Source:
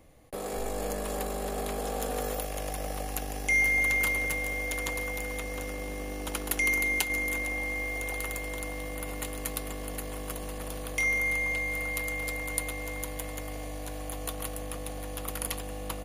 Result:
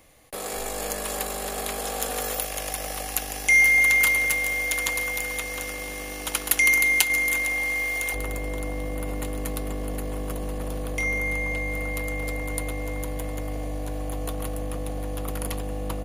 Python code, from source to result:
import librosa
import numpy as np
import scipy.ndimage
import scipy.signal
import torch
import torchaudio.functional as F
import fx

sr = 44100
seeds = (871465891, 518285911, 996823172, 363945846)

y = fx.tilt_shelf(x, sr, db=fx.steps((0.0, -6.0), (8.13, 5.0)), hz=880.0)
y = y * librosa.db_to_amplitude(3.5)